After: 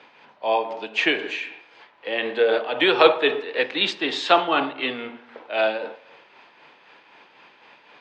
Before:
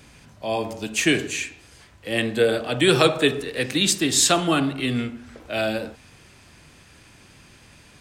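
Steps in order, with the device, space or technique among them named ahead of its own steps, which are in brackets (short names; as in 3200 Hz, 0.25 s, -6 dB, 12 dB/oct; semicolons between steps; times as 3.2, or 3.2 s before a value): HPF 460 Hz 12 dB/oct; combo amplifier with spring reverb and tremolo (spring tank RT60 1.1 s, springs 42 ms, DRR 18 dB; tremolo 3.9 Hz, depth 44%; speaker cabinet 80–3600 Hz, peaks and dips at 95 Hz -7 dB, 470 Hz +4 dB, 900 Hz +9 dB); gain +3.5 dB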